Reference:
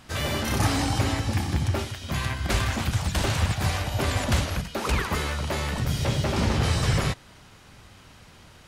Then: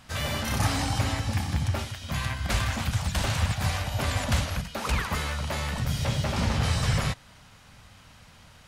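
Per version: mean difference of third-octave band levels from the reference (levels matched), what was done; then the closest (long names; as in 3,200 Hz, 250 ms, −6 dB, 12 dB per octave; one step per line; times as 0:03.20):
1.0 dB: parametric band 360 Hz −10 dB 0.57 octaves
level −1.5 dB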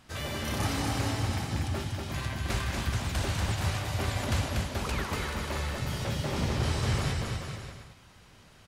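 3.0 dB: bouncing-ball delay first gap 240 ms, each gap 0.8×, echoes 5
level −7.5 dB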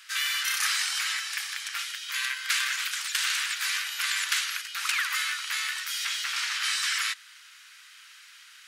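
18.5 dB: Butterworth high-pass 1,400 Hz 36 dB per octave
level +4.5 dB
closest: first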